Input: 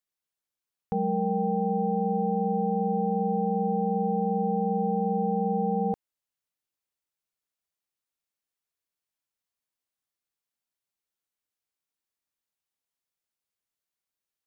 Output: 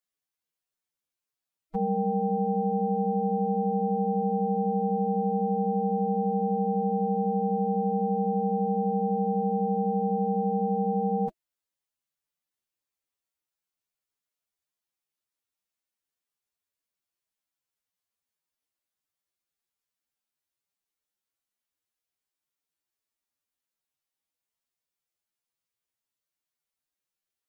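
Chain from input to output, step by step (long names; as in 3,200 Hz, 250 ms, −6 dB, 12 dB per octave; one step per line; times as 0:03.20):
phase-vocoder stretch with locked phases 1.9×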